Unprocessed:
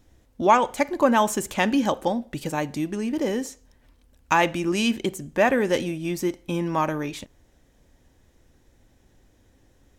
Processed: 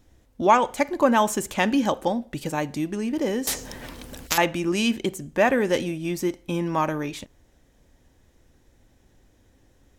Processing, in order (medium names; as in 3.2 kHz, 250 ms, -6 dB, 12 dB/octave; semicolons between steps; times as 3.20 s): 3.47–4.38 s: spectrum-flattening compressor 10:1